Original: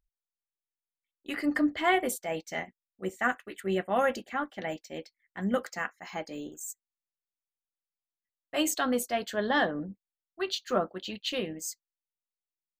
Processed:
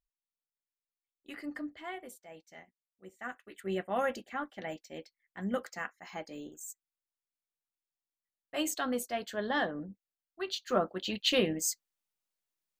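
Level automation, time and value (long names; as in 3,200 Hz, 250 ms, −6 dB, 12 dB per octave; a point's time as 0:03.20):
0:01.35 −10.5 dB
0:01.95 −17.5 dB
0:03.06 −17.5 dB
0:03.68 −5 dB
0:10.44 −5 dB
0:11.30 +5 dB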